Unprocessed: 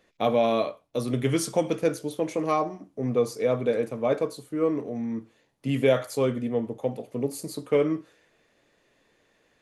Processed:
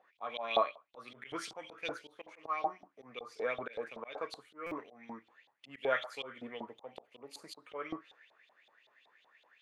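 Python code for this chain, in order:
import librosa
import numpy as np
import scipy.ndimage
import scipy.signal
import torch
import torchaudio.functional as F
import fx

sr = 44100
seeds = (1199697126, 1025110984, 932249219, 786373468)

y = fx.filter_lfo_bandpass(x, sr, shape='saw_up', hz=5.3, low_hz=720.0, high_hz=3800.0, q=5.9)
y = fx.auto_swell(y, sr, attack_ms=204.0)
y = fx.buffer_glitch(y, sr, at_s=(4.66,), block=256, repeats=8)
y = y * librosa.db_to_amplitude(10.5)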